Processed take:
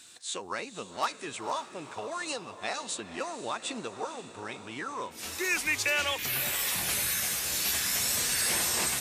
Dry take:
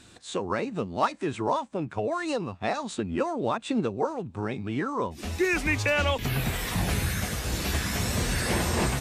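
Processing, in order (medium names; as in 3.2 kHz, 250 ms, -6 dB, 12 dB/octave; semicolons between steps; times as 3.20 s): tilt EQ +4 dB/octave; on a send: echo that smears into a reverb 502 ms, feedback 57%, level -12 dB; on the sum: trim -5.5 dB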